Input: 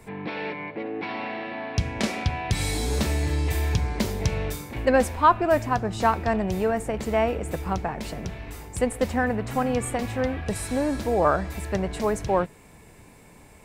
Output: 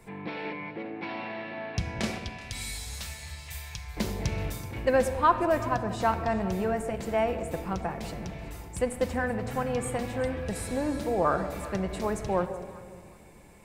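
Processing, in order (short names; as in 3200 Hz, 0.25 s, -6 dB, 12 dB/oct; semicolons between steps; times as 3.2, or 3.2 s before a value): 2.18–3.97 passive tone stack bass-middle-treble 10-0-10; echo with dull and thin repeats by turns 0.189 s, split 870 Hz, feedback 52%, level -12 dB; reverb RT60 2.0 s, pre-delay 6 ms, DRR 8.5 dB; gain -5 dB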